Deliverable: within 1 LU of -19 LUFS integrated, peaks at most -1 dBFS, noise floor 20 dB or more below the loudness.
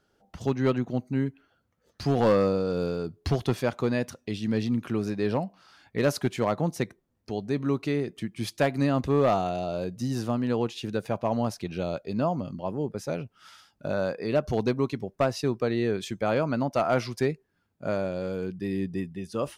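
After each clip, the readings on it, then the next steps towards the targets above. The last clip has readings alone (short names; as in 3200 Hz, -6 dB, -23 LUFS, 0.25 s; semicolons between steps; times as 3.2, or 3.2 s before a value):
clipped 0.4%; flat tops at -15.5 dBFS; loudness -28.5 LUFS; peak -15.5 dBFS; loudness target -19.0 LUFS
-> clip repair -15.5 dBFS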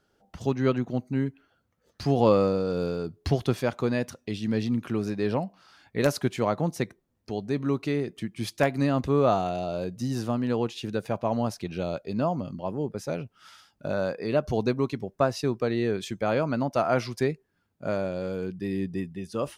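clipped 0.0%; loudness -28.0 LUFS; peak -6.5 dBFS; loudness target -19.0 LUFS
-> gain +9 dB; limiter -1 dBFS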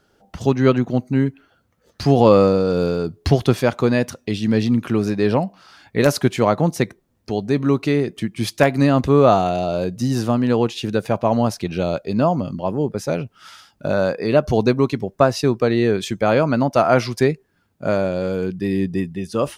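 loudness -19.0 LUFS; peak -1.0 dBFS; noise floor -64 dBFS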